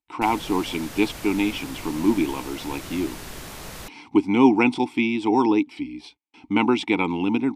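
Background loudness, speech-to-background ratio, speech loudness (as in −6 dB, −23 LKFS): −37.5 LKFS, 14.5 dB, −23.0 LKFS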